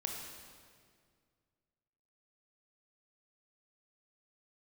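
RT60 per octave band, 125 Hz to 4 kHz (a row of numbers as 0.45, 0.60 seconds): 2.6, 2.4, 2.2, 1.9, 1.8, 1.6 seconds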